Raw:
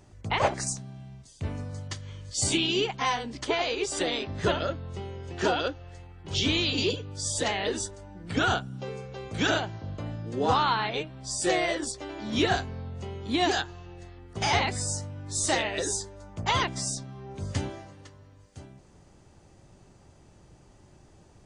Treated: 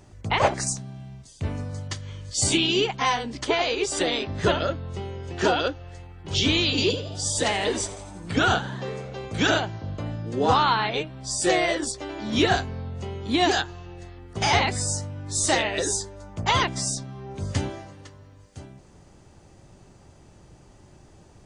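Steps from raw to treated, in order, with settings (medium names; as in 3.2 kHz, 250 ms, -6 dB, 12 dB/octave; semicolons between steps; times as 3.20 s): 6.72–9.26 s: frequency-shifting echo 85 ms, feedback 64%, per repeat +91 Hz, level -16 dB; trim +4 dB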